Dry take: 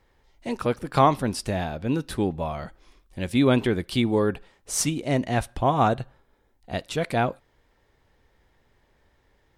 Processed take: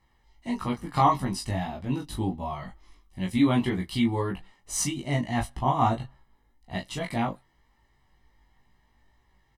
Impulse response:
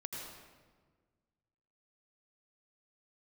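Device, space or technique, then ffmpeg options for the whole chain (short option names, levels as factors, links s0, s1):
double-tracked vocal: -filter_complex "[0:a]asettb=1/sr,asplit=3[s0][s1][s2];[s0]atrim=end=2.024[s3];[s1]atrim=start=2.02:end=2.48,asetpts=PTS-STARTPTS,afade=t=in:d=0.004:c=qsin,afade=t=out:st=0.456:d=0.004:c=qsin,equalizer=f=1700:t=o:w=0.98:g=-7.5[s4];[s2]atrim=start=2.476[s5];[s3][s4]acrossfade=d=0.004:c1=hsin:c2=qsin[s6];[s6][s5]acrossfade=d=0.004:c1=qsin:c2=hsin,asplit=2[s7][s8];[s8]adelay=21,volume=0.631[s9];[s7][s9]amix=inputs=2:normalize=0,flanger=delay=15.5:depth=2.2:speed=1.6,aecho=1:1:1:0.63,volume=0.75"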